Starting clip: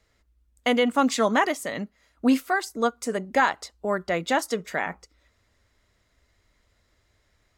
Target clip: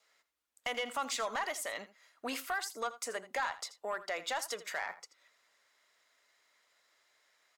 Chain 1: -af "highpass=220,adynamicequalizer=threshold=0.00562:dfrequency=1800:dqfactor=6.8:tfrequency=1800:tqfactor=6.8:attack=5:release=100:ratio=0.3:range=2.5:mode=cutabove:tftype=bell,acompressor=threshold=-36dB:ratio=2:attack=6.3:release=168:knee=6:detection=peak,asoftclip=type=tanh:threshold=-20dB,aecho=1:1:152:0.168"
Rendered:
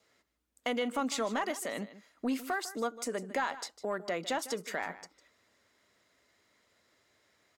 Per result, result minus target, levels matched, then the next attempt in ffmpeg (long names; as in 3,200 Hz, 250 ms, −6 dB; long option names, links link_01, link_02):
echo 70 ms late; 250 Hz band +11.0 dB; soft clipping: distortion −9 dB
-af "highpass=750,adynamicequalizer=threshold=0.00562:dfrequency=1800:dqfactor=6.8:tfrequency=1800:tqfactor=6.8:attack=5:release=100:ratio=0.3:range=2.5:mode=cutabove:tftype=bell,acompressor=threshold=-36dB:ratio=2:attack=6.3:release=168:knee=6:detection=peak,asoftclip=type=tanh:threshold=-20dB,aecho=1:1:82:0.168"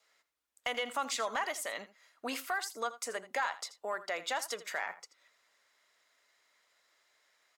soft clipping: distortion −9 dB
-af "highpass=750,adynamicequalizer=threshold=0.00562:dfrequency=1800:dqfactor=6.8:tfrequency=1800:tqfactor=6.8:attack=5:release=100:ratio=0.3:range=2.5:mode=cutabove:tftype=bell,acompressor=threshold=-36dB:ratio=2:attack=6.3:release=168:knee=6:detection=peak,asoftclip=type=tanh:threshold=-26dB,aecho=1:1:82:0.168"